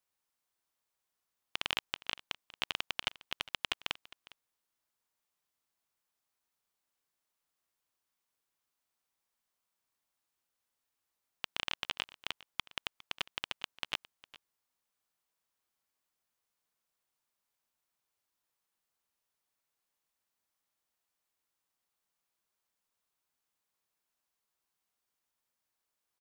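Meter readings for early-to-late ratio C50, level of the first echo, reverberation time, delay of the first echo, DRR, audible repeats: no reverb, -19.5 dB, no reverb, 407 ms, no reverb, 1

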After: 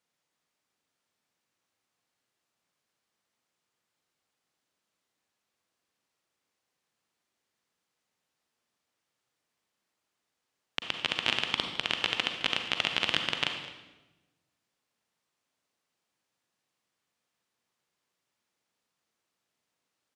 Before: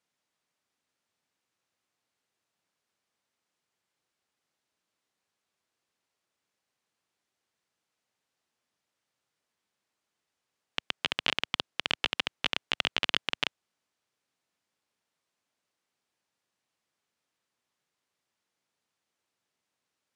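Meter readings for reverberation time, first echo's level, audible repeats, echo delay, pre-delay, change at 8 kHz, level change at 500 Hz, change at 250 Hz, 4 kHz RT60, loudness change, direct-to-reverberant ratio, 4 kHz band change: 1.1 s, -17.5 dB, 1, 213 ms, 36 ms, +1.0 dB, +1.5 dB, +2.0 dB, 0.90 s, +1.0 dB, 4.5 dB, +1.5 dB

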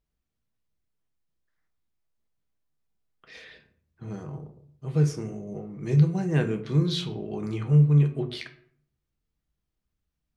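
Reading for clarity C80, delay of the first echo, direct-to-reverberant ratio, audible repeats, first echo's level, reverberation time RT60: 16.0 dB, no echo, 5.5 dB, no echo, no echo, 0.60 s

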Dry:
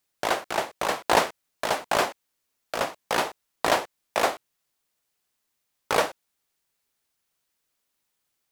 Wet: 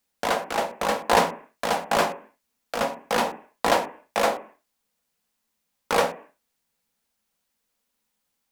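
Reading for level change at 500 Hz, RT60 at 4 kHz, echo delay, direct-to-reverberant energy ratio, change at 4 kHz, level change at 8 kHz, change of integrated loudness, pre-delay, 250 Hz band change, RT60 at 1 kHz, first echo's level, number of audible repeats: +2.5 dB, 0.60 s, no echo, 5.5 dB, 0.0 dB, 0.0 dB, +1.5 dB, 3 ms, +3.5 dB, 0.45 s, no echo, no echo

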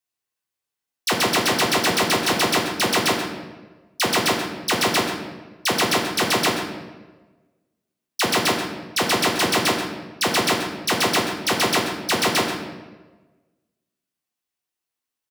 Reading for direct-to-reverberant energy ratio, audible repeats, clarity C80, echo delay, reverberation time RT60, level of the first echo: -1.0 dB, 1, 6.0 dB, 133 ms, 1.2 s, -11.0 dB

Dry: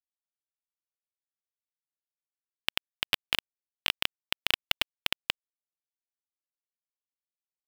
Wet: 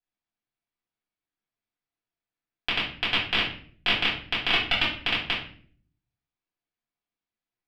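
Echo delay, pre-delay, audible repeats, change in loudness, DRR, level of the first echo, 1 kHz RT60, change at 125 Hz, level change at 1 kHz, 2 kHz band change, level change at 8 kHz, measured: no echo, 3 ms, no echo, +5.5 dB, -7.5 dB, no echo, 0.45 s, +12.0 dB, +8.5 dB, +7.5 dB, no reading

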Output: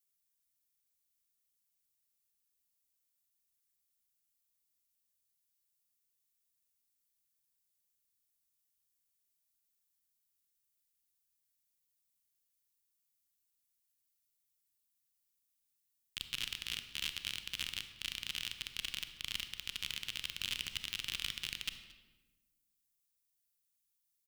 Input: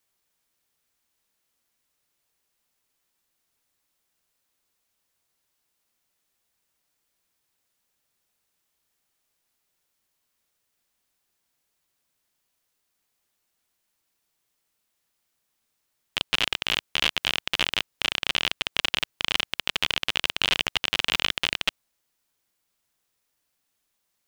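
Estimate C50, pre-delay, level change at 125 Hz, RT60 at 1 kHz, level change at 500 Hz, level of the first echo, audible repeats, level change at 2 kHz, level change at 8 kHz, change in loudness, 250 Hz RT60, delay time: 9.0 dB, 29 ms, -13.0 dB, 1.1 s, -27.0 dB, -21.5 dB, 1, -16.5 dB, -8.0 dB, -14.0 dB, 1.7 s, 225 ms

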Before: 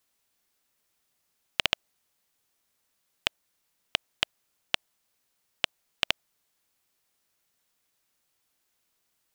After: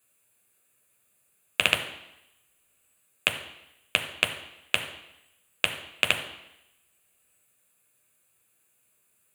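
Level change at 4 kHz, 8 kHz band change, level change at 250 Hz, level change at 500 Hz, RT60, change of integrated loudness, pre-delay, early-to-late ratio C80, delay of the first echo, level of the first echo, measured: +1.5 dB, +6.0 dB, +5.0 dB, +6.0 dB, 0.85 s, +4.0 dB, 7 ms, 11.5 dB, no echo, no echo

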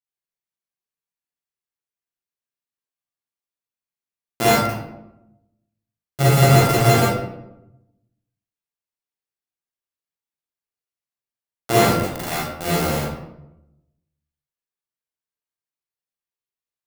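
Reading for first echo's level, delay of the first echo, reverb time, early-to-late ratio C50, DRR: no echo, no echo, 0.90 s, -3.0 dB, -8.5 dB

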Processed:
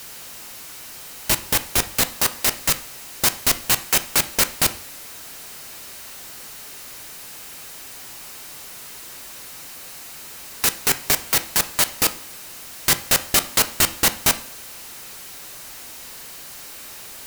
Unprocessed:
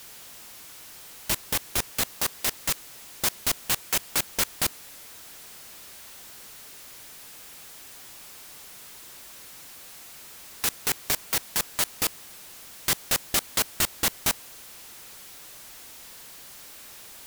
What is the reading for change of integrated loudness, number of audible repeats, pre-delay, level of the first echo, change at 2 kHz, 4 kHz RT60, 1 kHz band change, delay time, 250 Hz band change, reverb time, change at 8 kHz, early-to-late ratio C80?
+7.0 dB, no echo, 4 ms, no echo, +7.5 dB, 0.50 s, +7.5 dB, no echo, +7.5 dB, 0.55 s, +7.0 dB, 19.5 dB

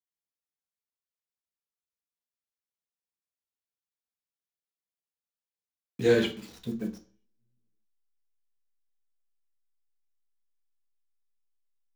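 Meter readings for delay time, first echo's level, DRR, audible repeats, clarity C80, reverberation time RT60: no echo, no echo, 3.0 dB, no echo, 19.5 dB, 0.45 s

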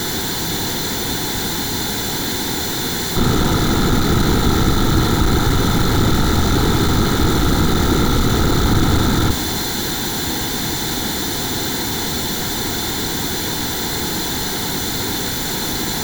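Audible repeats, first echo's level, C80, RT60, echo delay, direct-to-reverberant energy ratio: no echo, no echo, 14.5 dB, 1.1 s, no echo, 11.0 dB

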